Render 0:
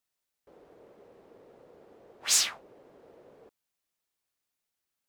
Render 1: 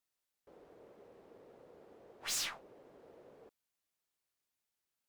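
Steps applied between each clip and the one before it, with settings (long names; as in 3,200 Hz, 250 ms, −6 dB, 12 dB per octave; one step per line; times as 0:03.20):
tube saturation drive 32 dB, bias 0.4
level −2 dB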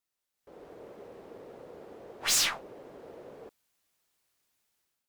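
automatic gain control gain up to 11 dB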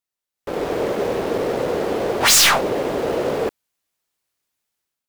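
leveller curve on the samples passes 5
level +8.5 dB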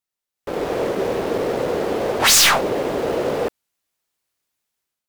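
wow of a warped record 45 rpm, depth 100 cents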